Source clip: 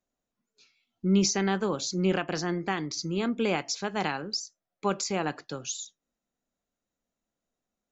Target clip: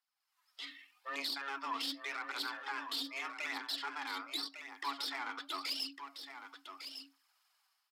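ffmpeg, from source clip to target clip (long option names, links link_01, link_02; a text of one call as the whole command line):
ffmpeg -i in.wav -filter_complex "[0:a]highpass=frequency=960:width=0.5412,highpass=frequency=960:width=1.3066,acompressor=threshold=-49dB:ratio=5,alimiter=level_in=17.5dB:limit=-24dB:level=0:latency=1:release=11,volume=-17.5dB,dynaudnorm=framelen=140:gausssize=5:maxgain=15.5dB,aeval=exprs='(tanh(56.2*val(0)+0.4)-tanh(0.4))/56.2':channel_layout=same,afreqshift=390,asetrate=31183,aresample=44100,atempo=1.41421,aphaser=in_gain=1:out_gain=1:delay=4.5:decay=0.45:speed=0.84:type=triangular,asplit=2[link_01][link_02];[link_02]aecho=0:1:1154:0.355[link_03];[link_01][link_03]amix=inputs=2:normalize=0,volume=1dB" out.wav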